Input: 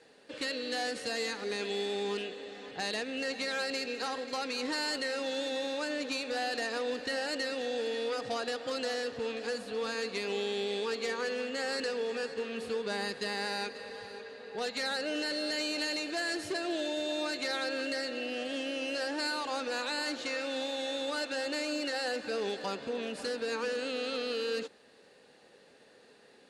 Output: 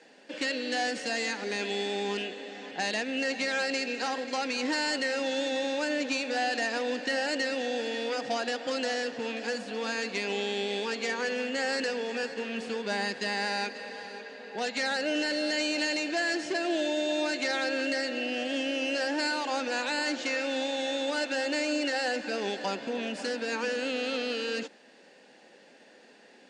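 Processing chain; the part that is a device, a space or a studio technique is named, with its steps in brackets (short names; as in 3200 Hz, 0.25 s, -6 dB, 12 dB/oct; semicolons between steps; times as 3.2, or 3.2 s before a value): 16.08–16.6 LPF 8400 Hz 12 dB/oct; television speaker (speaker cabinet 190–7600 Hz, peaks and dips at 440 Hz -8 dB, 1200 Hz -8 dB, 4000 Hz -7 dB); gain +6.5 dB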